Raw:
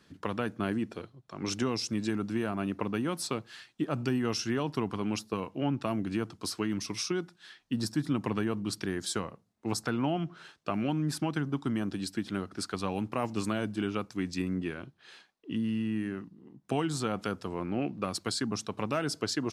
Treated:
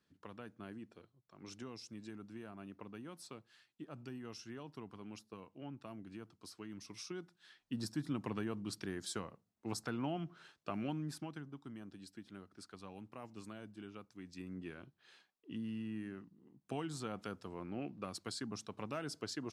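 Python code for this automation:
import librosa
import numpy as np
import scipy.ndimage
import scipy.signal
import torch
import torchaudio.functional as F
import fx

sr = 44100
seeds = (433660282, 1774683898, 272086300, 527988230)

y = fx.gain(x, sr, db=fx.line((6.56, -18.0), (7.73, -9.0), (10.9, -9.0), (11.55, -18.5), (14.21, -18.5), (14.76, -11.0)))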